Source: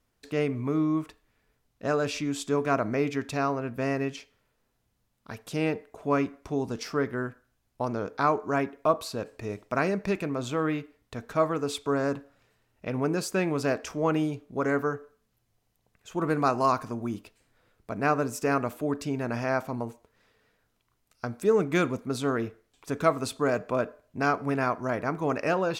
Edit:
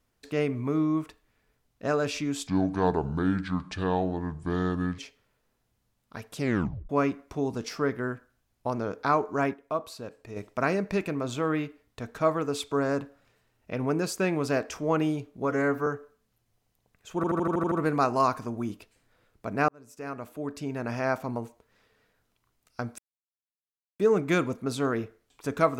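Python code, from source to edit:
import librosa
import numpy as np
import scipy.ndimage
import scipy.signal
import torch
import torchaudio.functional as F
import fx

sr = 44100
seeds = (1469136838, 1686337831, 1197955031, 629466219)

y = fx.edit(x, sr, fx.speed_span(start_s=2.47, length_s=1.66, speed=0.66),
    fx.tape_stop(start_s=5.53, length_s=0.51),
    fx.clip_gain(start_s=8.68, length_s=0.83, db=-6.5),
    fx.stretch_span(start_s=14.59, length_s=0.28, factor=1.5),
    fx.stutter(start_s=16.16, slice_s=0.08, count=8),
    fx.fade_in_span(start_s=18.13, length_s=1.43),
    fx.insert_silence(at_s=21.43, length_s=1.01), tone=tone)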